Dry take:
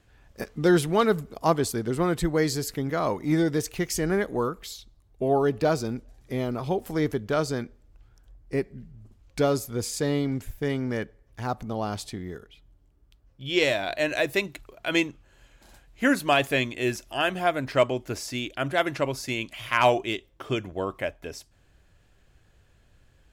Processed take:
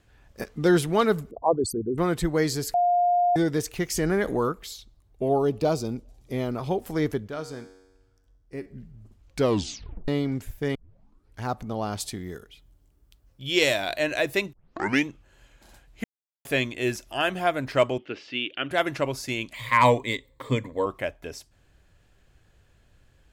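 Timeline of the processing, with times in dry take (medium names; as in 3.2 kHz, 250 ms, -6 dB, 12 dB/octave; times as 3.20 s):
1.31–1.98 s: resonances exaggerated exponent 3
2.74–3.36 s: bleep 707 Hz -18 dBFS
3.97–4.52 s: level flattener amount 50%
5.29–6.33 s: peaking EQ 1.7 kHz -11.5 dB 0.65 oct
7.28–8.66 s: feedback comb 94 Hz, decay 1.1 s, mix 70%
9.39 s: tape stop 0.69 s
10.75 s: tape start 0.67 s
12.00–13.99 s: treble shelf 4.9 kHz +10 dB
14.53 s: tape start 0.53 s
16.04–16.45 s: mute
17.98–18.71 s: cabinet simulation 240–3600 Hz, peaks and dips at 660 Hz -9 dB, 970 Hz -8 dB, 2.9 kHz +10 dB
19.54–20.86 s: rippled EQ curve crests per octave 1, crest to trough 15 dB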